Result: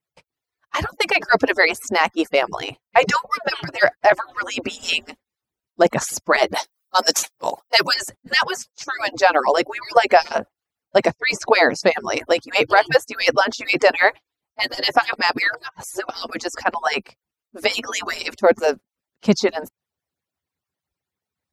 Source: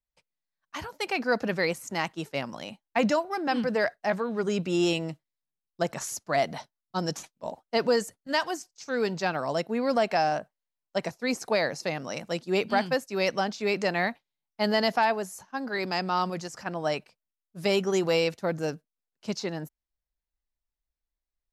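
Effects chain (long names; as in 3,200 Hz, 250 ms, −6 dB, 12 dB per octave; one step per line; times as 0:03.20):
harmonic-percussive split with one part muted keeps percussive
0:06.54–0:07.94: RIAA equalisation recording
0:11.10–0:11.91: low-pass that shuts in the quiet parts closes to 2,300 Hz, open at −27.5 dBFS
high-shelf EQ 3,000 Hz −8 dB
0:15.13–0:16.09: reverse
boost into a limiter +17.5 dB
level −1 dB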